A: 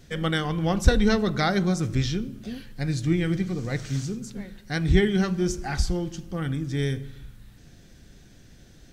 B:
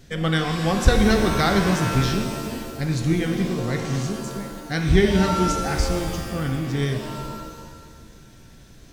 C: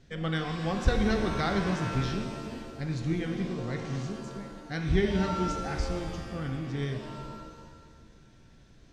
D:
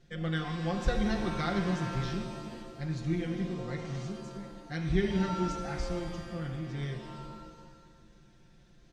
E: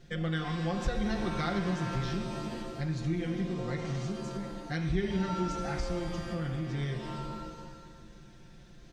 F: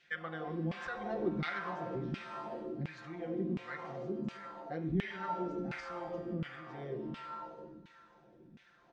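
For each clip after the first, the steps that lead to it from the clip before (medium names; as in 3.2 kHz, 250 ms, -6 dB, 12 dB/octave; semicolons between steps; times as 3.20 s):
pitch-shifted reverb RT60 1.6 s, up +7 st, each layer -2 dB, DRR 5.5 dB; trim +2 dB
distance through air 79 m; trim -8.5 dB
comb 5.7 ms; trim -5 dB
compression 2:1, threshold -40 dBFS, peak gain reduction 10.5 dB; trim +6.5 dB
LFO band-pass saw down 1.4 Hz 210–2600 Hz; trim +4.5 dB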